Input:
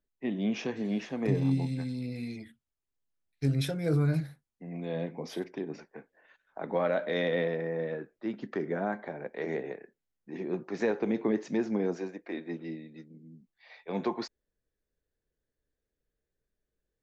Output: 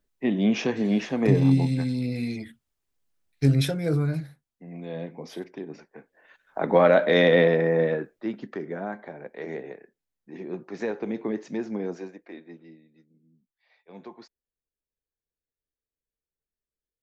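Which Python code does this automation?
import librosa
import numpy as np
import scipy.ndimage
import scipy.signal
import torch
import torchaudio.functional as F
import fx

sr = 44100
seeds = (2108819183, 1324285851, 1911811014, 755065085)

y = fx.gain(x, sr, db=fx.line((3.52, 8.0), (4.17, -0.5), (5.92, -0.5), (6.63, 11.0), (7.83, 11.0), (8.6, -1.0), (12.04, -1.0), (12.81, -12.0)))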